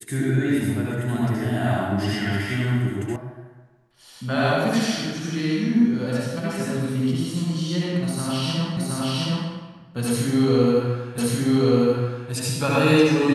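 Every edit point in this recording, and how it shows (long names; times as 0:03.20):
0:03.16: cut off before it has died away
0:08.77: the same again, the last 0.72 s
0:11.18: the same again, the last 1.13 s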